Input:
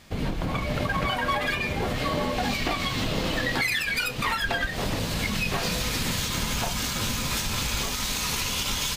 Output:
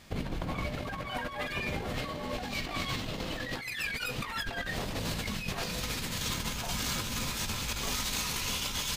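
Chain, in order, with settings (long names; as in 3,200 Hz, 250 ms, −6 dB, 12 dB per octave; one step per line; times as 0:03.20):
compressor whose output falls as the input rises −29 dBFS, ratio −0.5
level −5 dB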